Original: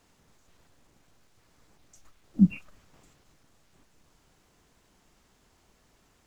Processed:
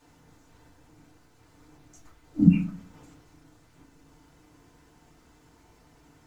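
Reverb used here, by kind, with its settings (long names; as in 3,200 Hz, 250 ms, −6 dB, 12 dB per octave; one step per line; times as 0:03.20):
feedback delay network reverb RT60 0.42 s, low-frequency decay 1.45×, high-frequency decay 0.4×, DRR −6 dB
level −1.5 dB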